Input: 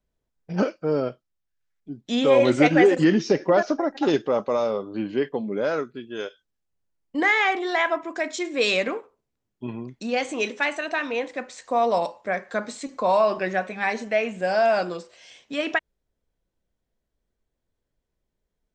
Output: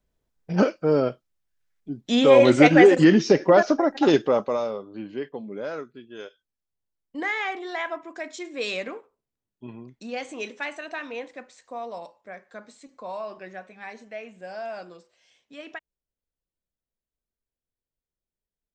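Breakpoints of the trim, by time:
4.26 s +3 dB
4.86 s -7.5 dB
11.21 s -7.5 dB
11.91 s -14.5 dB

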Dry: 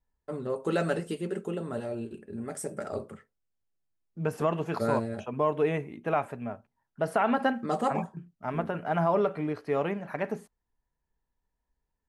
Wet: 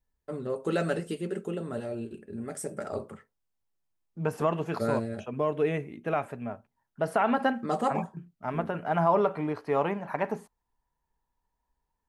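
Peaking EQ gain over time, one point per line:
peaking EQ 930 Hz 0.61 oct
2.60 s -3.5 dB
3.12 s +5.5 dB
4.23 s +5.5 dB
5.03 s -6 dB
6.06 s -6 dB
6.53 s +1 dB
8.84 s +1 dB
9.31 s +9 dB

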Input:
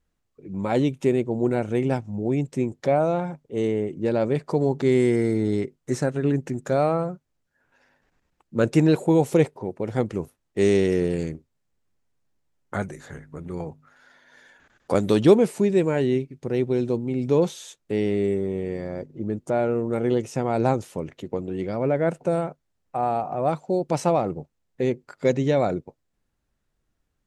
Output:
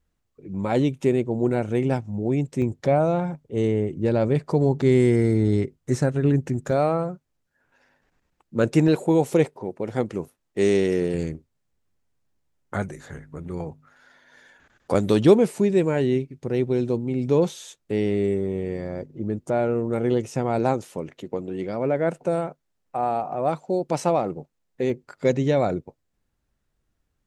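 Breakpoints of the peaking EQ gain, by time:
peaking EQ 66 Hz 1.8 oct
+3.5 dB
from 2.62 s +12 dB
from 6.71 s 0 dB
from 8.88 s -6.5 dB
from 11.14 s +3 dB
from 20.59 s -7.5 dB
from 24.90 s +2.5 dB

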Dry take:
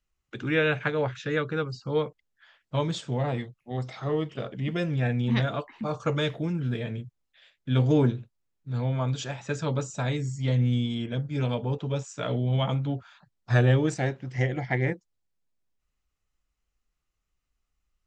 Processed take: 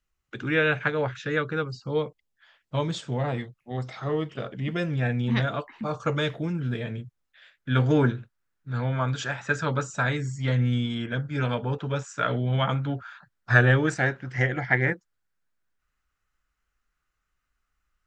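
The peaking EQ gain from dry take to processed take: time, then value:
peaking EQ 1.5 kHz 0.82 oct
1.54 s +4 dB
2.03 s -4.5 dB
3.20 s +4 dB
7.02 s +4 dB
7.70 s +13.5 dB

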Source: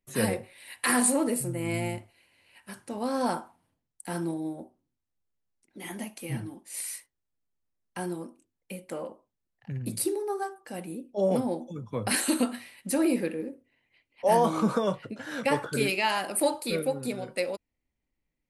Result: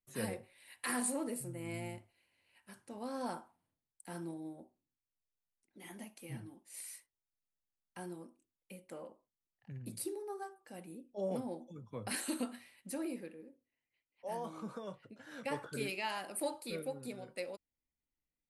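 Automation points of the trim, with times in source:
12.78 s -12 dB
13.38 s -19 dB
14.75 s -19 dB
15.62 s -12 dB

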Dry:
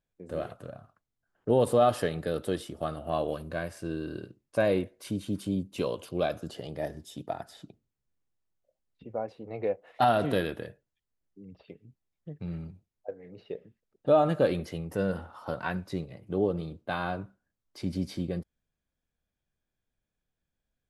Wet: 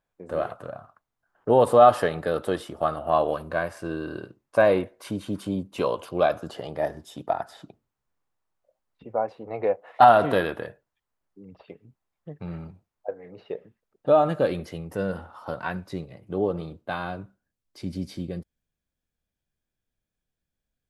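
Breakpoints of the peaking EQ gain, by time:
peaking EQ 1 kHz 1.9 oct
13.54 s +12 dB
14.37 s +3 dB
16.28 s +3 dB
16.61 s +9 dB
17.15 s -2 dB

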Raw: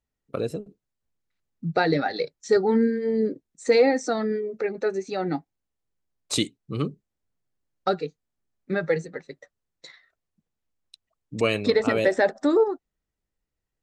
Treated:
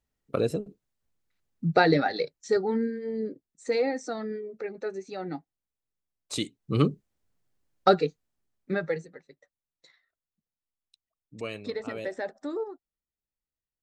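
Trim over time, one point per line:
1.79 s +2 dB
2.91 s -8 dB
6.34 s -8 dB
6.76 s +4.5 dB
8.00 s +4.5 dB
8.76 s -2.5 dB
9.21 s -13 dB

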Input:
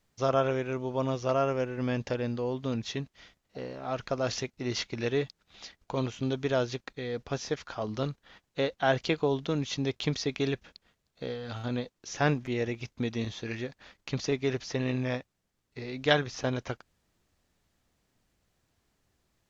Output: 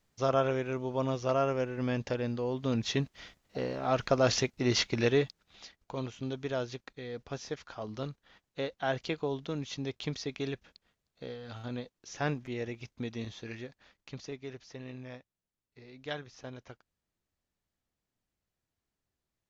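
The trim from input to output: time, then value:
2.48 s -1.5 dB
2.99 s +4.5 dB
4.99 s +4.5 dB
5.78 s -6 dB
13.47 s -6 dB
14.54 s -14 dB

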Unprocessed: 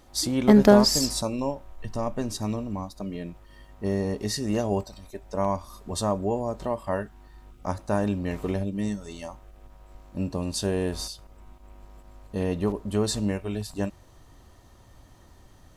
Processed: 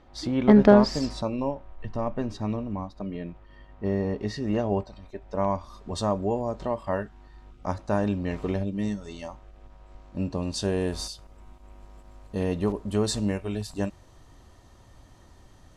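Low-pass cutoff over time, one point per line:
5.02 s 2.9 kHz
6.01 s 5.7 kHz
10.41 s 5.7 kHz
10.89 s 10 kHz

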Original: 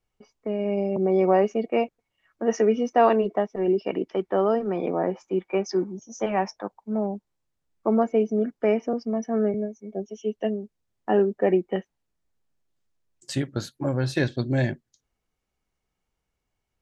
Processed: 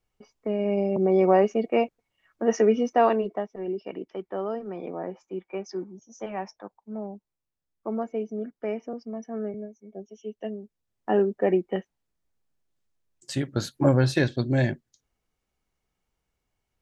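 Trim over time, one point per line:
2.80 s +0.5 dB
3.65 s -8.5 dB
10.35 s -8.5 dB
11.11 s -1.5 dB
13.38 s -1.5 dB
13.87 s +7 dB
14.23 s +0.5 dB

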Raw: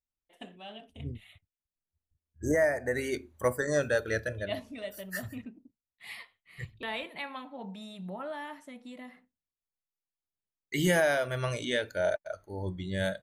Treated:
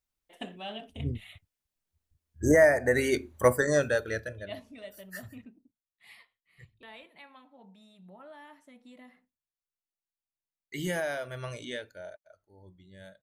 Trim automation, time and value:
3.53 s +6 dB
4.39 s -5.5 dB
5.34 s -5.5 dB
6.68 s -13 dB
7.97 s -13 dB
8.96 s -6.5 dB
11.71 s -6.5 dB
12.19 s -19 dB

